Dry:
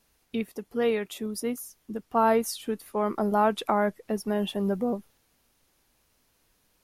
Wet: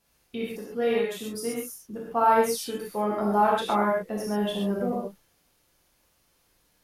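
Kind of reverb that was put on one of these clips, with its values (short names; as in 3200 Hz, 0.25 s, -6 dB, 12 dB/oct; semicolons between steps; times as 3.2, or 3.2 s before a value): non-linear reverb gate 0.16 s flat, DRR -5 dB; gain -4.5 dB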